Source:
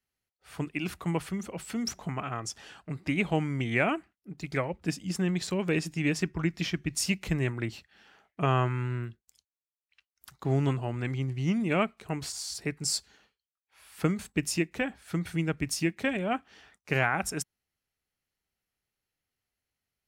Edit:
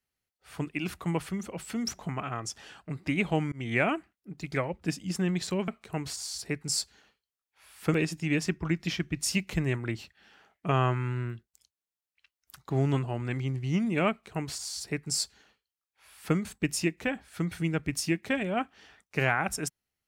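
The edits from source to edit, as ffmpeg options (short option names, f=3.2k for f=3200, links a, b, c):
-filter_complex "[0:a]asplit=4[a][b][c][d];[a]atrim=end=3.52,asetpts=PTS-STARTPTS,afade=t=out:st=3.516:d=0.004:c=hsin[e];[b]atrim=start=3.52:end=5.682,asetpts=PTS-STARTPTS,afade=t=in:d=0.27:c=qsin[f];[c]atrim=start=11.838:end=14.102[g];[d]atrim=start=5.678[h];[e][f]concat=n=2:v=0:a=1[i];[i][g]acrossfade=d=0.004:c1=hsin:c2=hsin[j];[j][h]acrossfade=d=0.004:c1=hsin:c2=hsin"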